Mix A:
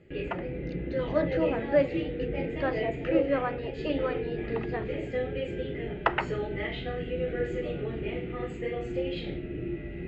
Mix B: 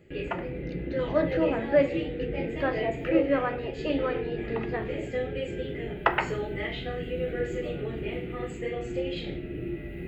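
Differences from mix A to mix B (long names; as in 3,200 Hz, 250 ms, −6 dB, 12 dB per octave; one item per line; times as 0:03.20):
speech: send +10.0 dB
background: remove high-frequency loss of the air 99 metres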